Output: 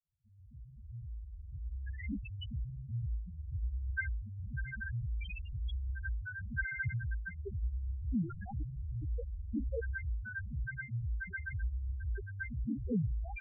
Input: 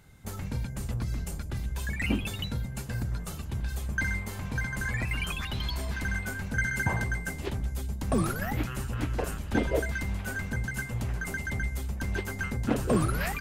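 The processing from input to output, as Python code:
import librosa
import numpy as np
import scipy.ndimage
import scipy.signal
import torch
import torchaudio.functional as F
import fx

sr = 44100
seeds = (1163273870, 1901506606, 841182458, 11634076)

y = fx.fade_in_head(x, sr, length_s=2.63)
y = fx.spec_topn(y, sr, count=2)
y = F.gain(torch.from_numpy(y), -2.5).numpy()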